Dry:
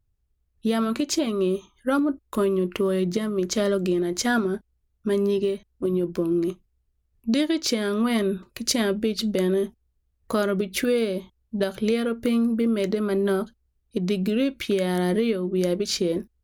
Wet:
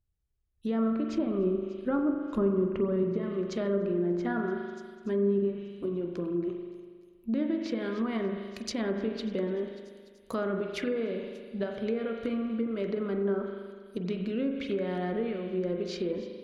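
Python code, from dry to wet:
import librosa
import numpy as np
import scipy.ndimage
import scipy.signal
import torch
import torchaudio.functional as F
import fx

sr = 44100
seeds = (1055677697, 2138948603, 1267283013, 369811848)

p1 = fx.low_shelf(x, sr, hz=220.0, db=10.0, at=(1.08, 3.03))
p2 = p1 + fx.echo_wet_highpass(p1, sr, ms=293, feedback_pct=57, hz=2600.0, wet_db=-18.5, dry=0)
p3 = fx.rev_spring(p2, sr, rt60_s=1.7, pass_ms=(40,), chirp_ms=60, drr_db=3.5)
p4 = fx.env_lowpass_down(p3, sr, base_hz=1400.0, full_db=-16.5)
y = p4 * librosa.db_to_amplitude(-8.5)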